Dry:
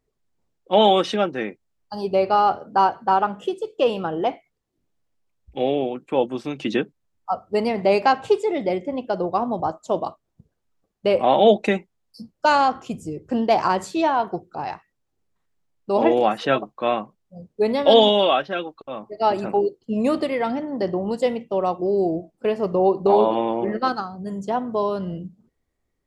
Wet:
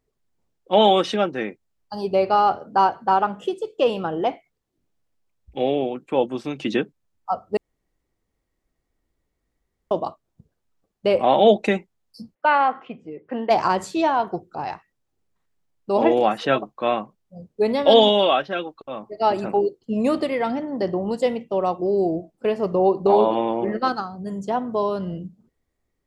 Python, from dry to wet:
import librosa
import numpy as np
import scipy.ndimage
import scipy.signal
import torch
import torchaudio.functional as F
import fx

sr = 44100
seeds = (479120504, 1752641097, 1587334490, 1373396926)

y = fx.cabinet(x, sr, low_hz=310.0, low_slope=12, high_hz=2800.0, hz=(350.0, 630.0, 2000.0), db=(-6, -3, 6), at=(12.34, 13.49), fade=0.02)
y = fx.edit(y, sr, fx.room_tone_fill(start_s=7.57, length_s=2.34), tone=tone)